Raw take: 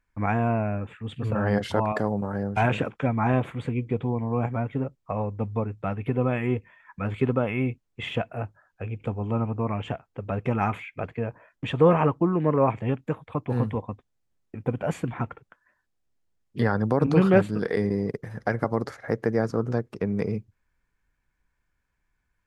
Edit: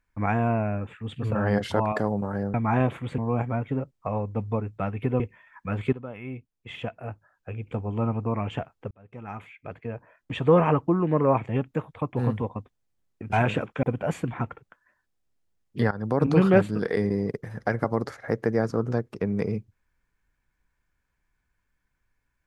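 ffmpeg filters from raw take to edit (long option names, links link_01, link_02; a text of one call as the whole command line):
ffmpeg -i in.wav -filter_complex "[0:a]asplit=9[link_01][link_02][link_03][link_04][link_05][link_06][link_07][link_08][link_09];[link_01]atrim=end=2.542[link_10];[link_02]atrim=start=3.068:end=3.712[link_11];[link_03]atrim=start=4.218:end=6.242[link_12];[link_04]atrim=start=6.528:end=7.26,asetpts=PTS-STARTPTS,afade=type=out:start_time=0.728:duration=0.004:curve=hsin:silence=0.158489[link_13];[link_05]atrim=start=7.26:end=10.24,asetpts=PTS-STARTPTS,afade=type=in:duration=2.11:silence=0.158489,afade=type=out:start_time=2.976:duration=0.004:curve=hsin[link_14];[link_06]atrim=start=10.24:end=14.632,asetpts=PTS-STARTPTS,afade=type=in:duration=1.68[link_15];[link_07]atrim=start=2.538:end=3.072[link_16];[link_08]atrim=start=14.628:end=16.71,asetpts=PTS-STARTPTS,afade=type=out:start_time=2.078:duration=0.004:curve=hsin:silence=0.158489[link_17];[link_09]atrim=start=16.71,asetpts=PTS-STARTPTS,afade=type=in:duration=0.29:silence=0.158489[link_18];[link_10][link_11]acrossfade=duration=0.004:curve1=hsin:curve2=hsin[link_19];[link_19][link_12]acrossfade=duration=0.004:curve1=hsin:curve2=hsin[link_20];[link_13][link_14][link_15]concat=n=3:v=0:a=1[link_21];[link_20][link_21]acrossfade=duration=0.004:curve1=hsin:curve2=hsin[link_22];[link_22][link_16]acrossfade=duration=0.004:curve1=hsin:curve2=hsin[link_23];[link_17][link_18]concat=n=2:v=0:a=1[link_24];[link_23][link_24]acrossfade=duration=0.004:curve1=hsin:curve2=hsin" out.wav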